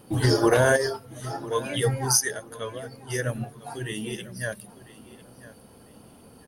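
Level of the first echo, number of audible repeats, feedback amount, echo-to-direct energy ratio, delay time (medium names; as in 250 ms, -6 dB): -18.5 dB, 2, 25%, -18.0 dB, 999 ms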